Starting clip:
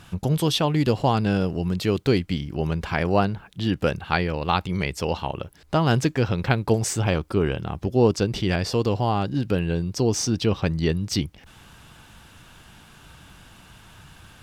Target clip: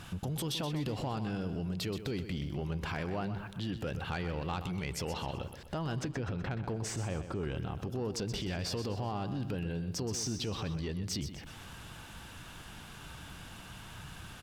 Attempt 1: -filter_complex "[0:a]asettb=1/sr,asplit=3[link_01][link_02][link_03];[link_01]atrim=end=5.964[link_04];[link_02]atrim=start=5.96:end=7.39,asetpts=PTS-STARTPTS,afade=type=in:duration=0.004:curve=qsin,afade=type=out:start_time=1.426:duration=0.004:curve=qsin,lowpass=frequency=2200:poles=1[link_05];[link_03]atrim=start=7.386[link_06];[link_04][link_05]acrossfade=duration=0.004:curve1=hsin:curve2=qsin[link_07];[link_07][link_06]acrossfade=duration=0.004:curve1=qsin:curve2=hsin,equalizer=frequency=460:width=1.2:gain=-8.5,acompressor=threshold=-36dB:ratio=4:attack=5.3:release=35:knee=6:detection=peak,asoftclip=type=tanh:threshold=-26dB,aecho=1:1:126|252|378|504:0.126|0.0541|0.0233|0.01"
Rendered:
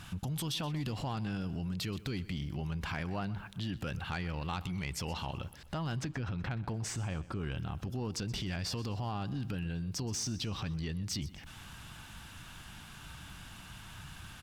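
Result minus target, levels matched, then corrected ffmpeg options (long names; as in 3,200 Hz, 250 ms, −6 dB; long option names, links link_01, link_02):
500 Hz band −5.0 dB; echo-to-direct −7.5 dB
-filter_complex "[0:a]asettb=1/sr,asplit=3[link_01][link_02][link_03];[link_01]atrim=end=5.964[link_04];[link_02]atrim=start=5.96:end=7.39,asetpts=PTS-STARTPTS,afade=type=in:duration=0.004:curve=qsin,afade=type=out:start_time=1.426:duration=0.004:curve=qsin,lowpass=frequency=2200:poles=1[link_05];[link_03]atrim=start=7.386[link_06];[link_04][link_05]acrossfade=duration=0.004:curve1=hsin:curve2=qsin[link_07];[link_07][link_06]acrossfade=duration=0.004:curve1=qsin:curve2=hsin,acompressor=threshold=-36dB:ratio=4:attack=5.3:release=35:knee=6:detection=peak,asoftclip=type=tanh:threshold=-26dB,aecho=1:1:126|252|378|504|630:0.299|0.128|0.0552|0.0237|0.0102"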